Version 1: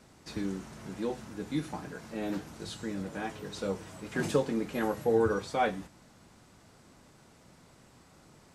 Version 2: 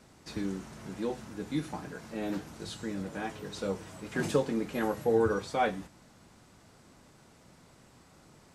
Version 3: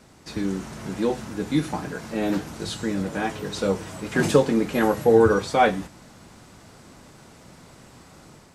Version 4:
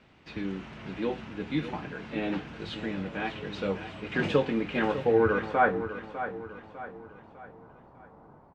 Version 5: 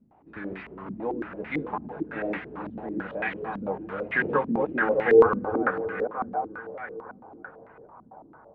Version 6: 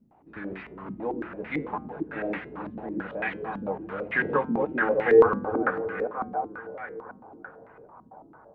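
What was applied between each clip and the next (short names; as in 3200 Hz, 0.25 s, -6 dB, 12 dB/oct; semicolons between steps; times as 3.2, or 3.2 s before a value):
nothing audible
AGC gain up to 4.5 dB; gain +5.5 dB
low-pass sweep 2800 Hz -> 910 Hz, 5.04–6.11; on a send: feedback echo 0.601 s, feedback 44%, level -11 dB; on the sum: gain -7.5 dB
reverse delay 0.225 s, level -3 dB; low shelf 400 Hz -8.5 dB; stepped low-pass 9 Hz 230–2000 Hz
flange 0.33 Hz, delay 5.8 ms, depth 1.5 ms, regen -90%; gain +4 dB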